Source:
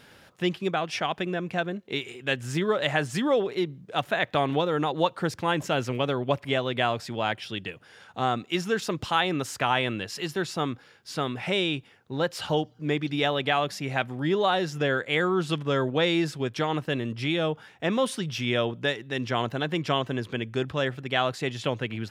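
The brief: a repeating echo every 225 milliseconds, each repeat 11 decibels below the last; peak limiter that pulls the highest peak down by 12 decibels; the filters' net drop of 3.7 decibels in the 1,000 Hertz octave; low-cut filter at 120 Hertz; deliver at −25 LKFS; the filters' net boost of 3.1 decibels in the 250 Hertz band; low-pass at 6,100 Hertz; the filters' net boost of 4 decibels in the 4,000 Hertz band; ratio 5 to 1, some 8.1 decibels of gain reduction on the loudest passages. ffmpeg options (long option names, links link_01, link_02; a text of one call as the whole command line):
ffmpeg -i in.wav -af "highpass=120,lowpass=6100,equalizer=frequency=250:width_type=o:gain=5,equalizer=frequency=1000:width_type=o:gain=-6,equalizer=frequency=4000:width_type=o:gain=6,acompressor=threshold=-28dB:ratio=5,alimiter=level_in=1.5dB:limit=-24dB:level=0:latency=1,volume=-1.5dB,aecho=1:1:225|450|675:0.282|0.0789|0.0221,volume=11dB" out.wav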